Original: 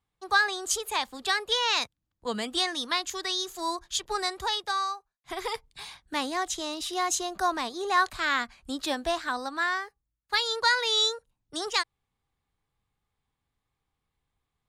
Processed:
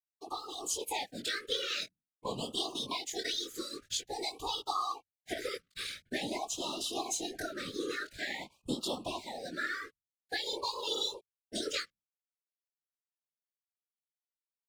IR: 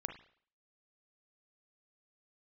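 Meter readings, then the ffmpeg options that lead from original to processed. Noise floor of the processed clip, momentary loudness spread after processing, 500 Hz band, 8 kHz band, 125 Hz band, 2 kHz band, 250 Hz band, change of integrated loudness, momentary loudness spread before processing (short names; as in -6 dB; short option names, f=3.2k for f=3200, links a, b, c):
under -85 dBFS, 7 LU, -6.0 dB, -5.5 dB, n/a, -11.5 dB, -4.5 dB, -8.5 dB, 12 LU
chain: -filter_complex "[0:a]acompressor=threshold=-39dB:ratio=4,asplit=2[a][b];[1:a]atrim=start_sample=2205,afade=t=out:st=0.22:d=0.01,atrim=end_sample=10143,asetrate=36162,aresample=44100[c];[b][c]afir=irnorm=-1:irlink=0,volume=-13dB[d];[a][d]amix=inputs=2:normalize=0,aeval=exprs='sgn(val(0))*max(abs(val(0))-0.00141,0)':c=same,flanger=delay=17:depth=5:speed=0.2,bandreject=f=60:t=h:w=6,bandreject=f=120:t=h:w=6,bandreject=f=180:t=h:w=6,afftfilt=real='hypot(re,im)*cos(2*PI*random(0))':imag='hypot(re,im)*sin(2*PI*random(1))':win_size=512:overlap=0.75,dynaudnorm=f=300:g=3:m=8dB,afftfilt=real='re*(1-between(b*sr/1024,790*pow(1900/790,0.5+0.5*sin(2*PI*0.48*pts/sr))/1.41,790*pow(1900/790,0.5+0.5*sin(2*PI*0.48*pts/sr))*1.41))':imag='im*(1-between(b*sr/1024,790*pow(1900/790,0.5+0.5*sin(2*PI*0.48*pts/sr))/1.41,790*pow(1900/790,0.5+0.5*sin(2*PI*0.48*pts/sr))*1.41))':win_size=1024:overlap=0.75,volume=5dB"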